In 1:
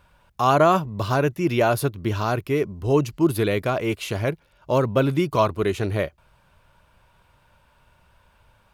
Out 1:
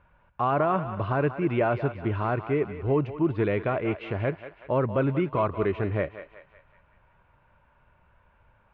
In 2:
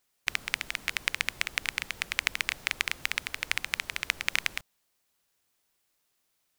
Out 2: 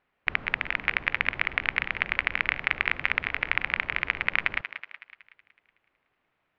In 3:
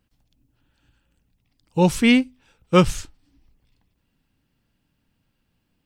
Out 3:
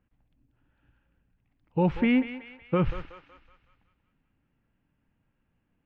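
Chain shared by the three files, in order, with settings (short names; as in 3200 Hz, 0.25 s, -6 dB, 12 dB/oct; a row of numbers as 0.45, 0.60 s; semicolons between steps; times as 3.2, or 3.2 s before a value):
LPF 2400 Hz 24 dB/oct; limiter -12 dBFS; thinning echo 0.186 s, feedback 53%, high-pass 610 Hz, level -10 dB; match loudness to -27 LUFS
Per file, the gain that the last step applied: -3.0, +8.0, -3.0 dB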